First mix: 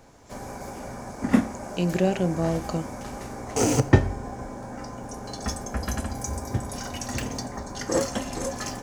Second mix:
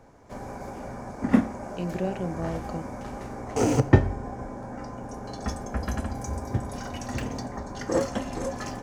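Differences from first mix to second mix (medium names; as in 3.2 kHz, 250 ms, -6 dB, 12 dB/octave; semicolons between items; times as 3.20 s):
speech -6.5 dB; master: add treble shelf 3.5 kHz -10.5 dB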